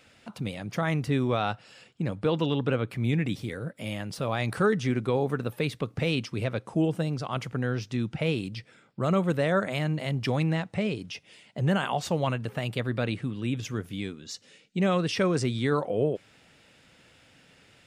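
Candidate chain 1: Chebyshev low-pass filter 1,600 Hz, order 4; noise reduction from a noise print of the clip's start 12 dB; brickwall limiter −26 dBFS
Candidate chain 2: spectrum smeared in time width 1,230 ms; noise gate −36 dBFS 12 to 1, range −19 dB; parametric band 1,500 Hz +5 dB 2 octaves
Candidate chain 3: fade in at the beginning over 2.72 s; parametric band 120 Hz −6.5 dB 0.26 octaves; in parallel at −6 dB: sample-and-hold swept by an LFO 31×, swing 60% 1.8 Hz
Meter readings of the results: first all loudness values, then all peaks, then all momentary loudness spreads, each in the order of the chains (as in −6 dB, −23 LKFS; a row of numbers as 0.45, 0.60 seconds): −36.5, −33.0, −27.0 LKFS; −26.0, −17.0, −11.0 dBFS; 6, 5, 12 LU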